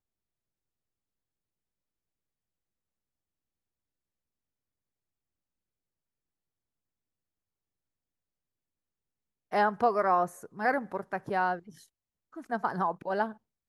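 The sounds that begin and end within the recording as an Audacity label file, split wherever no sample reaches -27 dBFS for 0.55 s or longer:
9.530000	11.540000	sound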